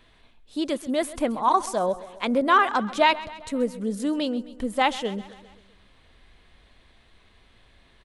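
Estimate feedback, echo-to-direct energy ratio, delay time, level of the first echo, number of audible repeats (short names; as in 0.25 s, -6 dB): 59%, -15.5 dB, 0.132 s, -17.5 dB, 4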